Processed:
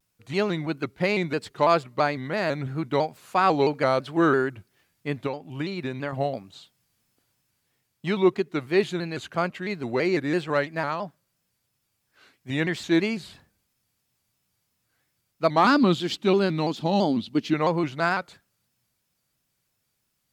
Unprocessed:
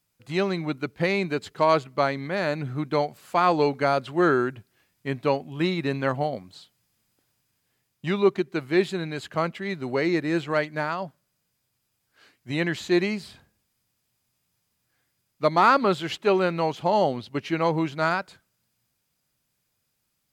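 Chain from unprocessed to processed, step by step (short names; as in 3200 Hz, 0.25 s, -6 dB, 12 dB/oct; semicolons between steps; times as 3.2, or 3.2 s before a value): 5.26–6.13 compressor 6:1, threshold -27 dBFS, peak gain reduction 10 dB; 15.64–17.54 graphic EQ 125/250/500/1000/2000/4000 Hz -3/+12/-6/-3/-5/+6 dB; shaped vibrato square 3 Hz, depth 100 cents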